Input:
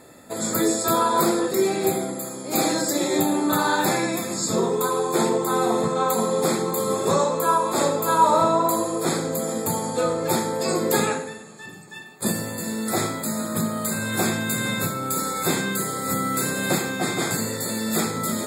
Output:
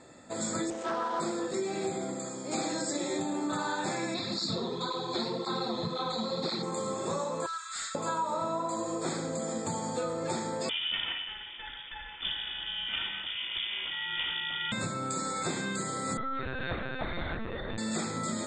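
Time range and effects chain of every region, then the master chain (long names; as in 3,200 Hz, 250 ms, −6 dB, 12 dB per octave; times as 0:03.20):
0:00.70–0:01.20: running median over 9 samples + band-pass filter 250–6,100 Hz + highs frequency-modulated by the lows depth 0.26 ms
0:04.14–0:06.63: low-pass with resonance 4,100 Hz, resonance Q 7.5 + low-shelf EQ 180 Hz +8.5 dB + through-zero flanger with one copy inverted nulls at 1.9 Hz, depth 7.1 ms
0:07.46–0:07.95: Chebyshev high-pass filter 1,300 Hz, order 6 + notch filter 2,500 Hz, Q 8.3 + gain into a clipping stage and back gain 27.5 dB
0:10.69–0:14.72: lower of the sound and its delayed copy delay 1.9 ms + upward compression, threshold −28 dBFS + voice inversion scrambler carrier 3,500 Hz
0:16.17–0:17.78: low-shelf EQ 90 Hz −6.5 dB + mains-hum notches 50/100/150/200/250/300/350/400 Hz + linear-prediction vocoder at 8 kHz pitch kept
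whole clip: Butterworth low-pass 8,700 Hz 96 dB per octave; downward compressor, threshold −24 dBFS; notch filter 430 Hz, Q 12; level −5 dB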